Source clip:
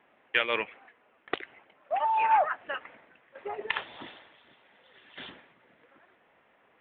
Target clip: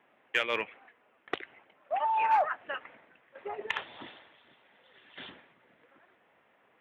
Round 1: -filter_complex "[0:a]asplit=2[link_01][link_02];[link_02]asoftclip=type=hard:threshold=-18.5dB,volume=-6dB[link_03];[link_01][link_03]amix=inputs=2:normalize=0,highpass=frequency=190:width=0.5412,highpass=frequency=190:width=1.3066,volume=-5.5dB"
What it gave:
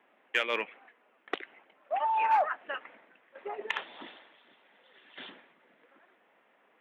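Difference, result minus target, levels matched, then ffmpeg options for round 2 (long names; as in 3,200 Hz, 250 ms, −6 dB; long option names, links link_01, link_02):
125 Hz band −8.5 dB
-filter_complex "[0:a]asplit=2[link_01][link_02];[link_02]asoftclip=type=hard:threshold=-18.5dB,volume=-6dB[link_03];[link_01][link_03]amix=inputs=2:normalize=0,highpass=frequency=65:width=0.5412,highpass=frequency=65:width=1.3066,volume=-5.5dB"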